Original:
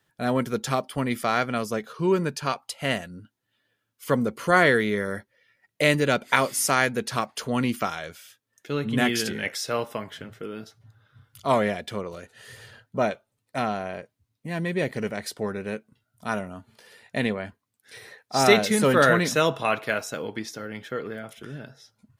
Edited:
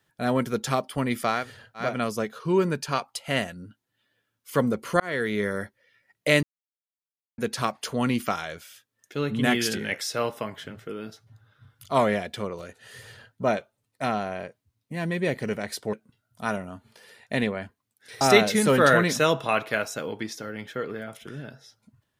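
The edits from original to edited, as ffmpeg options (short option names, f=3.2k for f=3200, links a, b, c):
-filter_complex "[0:a]asplit=8[a][b][c][d][e][f][g][h];[a]atrim=end=1.52[i];[b]atrim=start=12.42:end=13.12[j];[c]atrim=start=1.28:end=4.54,asetpts=PTS-STARTPTS,afade=t=out:st=3.256:d=0.004:c=hsin[k];[d]atrim=start=4.54:end=5.97,asetpts=PTS-STARTPTS,afade=t=in:d=0.43,afade=t=out:st=1.426:d=0.004:c=hsin[l];[e]atrim=start=5.97:end=6.92,asetpts=PTS-STARTPTS,volume=0[m];[f]atrim=start=6.92:end=15.472,asetpts=PTS-STARTPTS,afade=t=in:d=0.004:c=hsin[n];[g]atrim=start=15.758:end=18.042[o];[h]atrim=start=18.368[p];[i][j]acrossfade=d=0.24:c1=tri:c2=tri[q];[k][l][m][n]concat=n=4:v=0:a=1[r];[q][r]acrossfade=d=0.24:c1=tri:c2=tri[s];[s][o]acrossfade=d=0.004:c1=hsin:c2=hsin[t];[t][p]acrossfade=d=0.004:c1=hsin:c2=hsin"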